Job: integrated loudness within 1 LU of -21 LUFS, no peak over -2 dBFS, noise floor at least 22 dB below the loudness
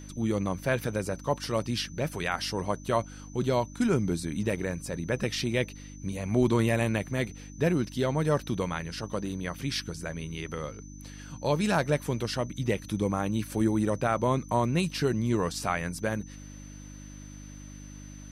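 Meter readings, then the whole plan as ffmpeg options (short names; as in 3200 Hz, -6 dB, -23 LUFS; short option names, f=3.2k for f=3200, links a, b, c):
hum 50 Hz; harmonics up to 300 Hz; hum level -44 dBFS; steady tone 6100 Hz; tone level -52 dBFS; loudness -29.5 LUFS; peak -13.0 dBFS; loudness target -21.0 LUFS
-> -af "bandreject=f=50:t=h:w=4,bandreject=f=100:t=h:w=4,bandreject=f=150:t=h:w=4,bandreject=f=200:t=h:w=4,bandreject=f=250:t=h:w=4,bandreject=f=300:t=h:w=4"
-af "bandreject=f=6.1k:w=30"
-af "volume=8.5dB"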